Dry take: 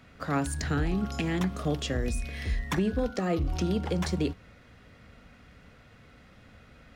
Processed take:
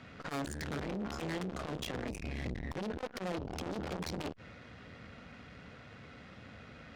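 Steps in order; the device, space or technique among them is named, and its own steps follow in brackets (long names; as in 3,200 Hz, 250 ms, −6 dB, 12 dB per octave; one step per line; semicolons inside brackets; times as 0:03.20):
valve radio (band-pass filter 86–5,900 Hz; tube saturation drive 40 dB, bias 0.75; saturating transformer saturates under 380 Hz)
0:02.23–0:02.75: tilt shelving filter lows +5 dB, about 930 Hz
level +8 dB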